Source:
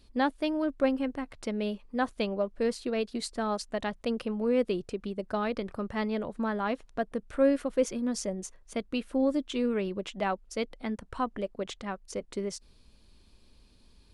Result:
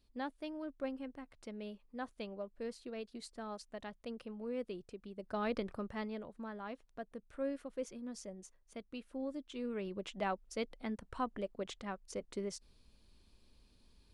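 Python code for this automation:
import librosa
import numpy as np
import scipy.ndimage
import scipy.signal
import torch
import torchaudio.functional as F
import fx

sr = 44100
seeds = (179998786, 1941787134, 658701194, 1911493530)

y = fx.gain(x, sr, db=fx.line((5.09, -14.0), (5.54, -3.5), (6.35, -14.5), (9.45, -14.5), (10.08, -6.5)))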